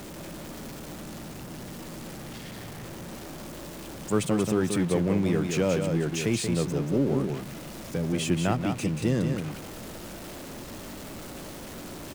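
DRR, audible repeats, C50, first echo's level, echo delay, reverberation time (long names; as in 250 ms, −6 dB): no reverb audible, 1, no reverb audible, −5.5 dB, 183 ms, no reverb audible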